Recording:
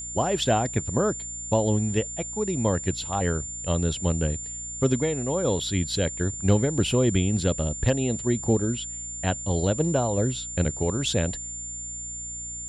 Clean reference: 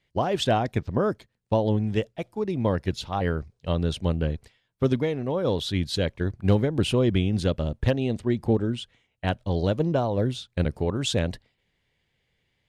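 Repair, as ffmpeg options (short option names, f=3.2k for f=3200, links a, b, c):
-af "bandreject=f=59.6:t=h:w=4,bandreject=f=119.2:t=h:w=4,bandreject=f=178.8:t=h:w=4,bandreject=f=238.4:t=h:w=4,bandreject=f=298:t=h:w=4,bandreject=f=7.2k:w=30"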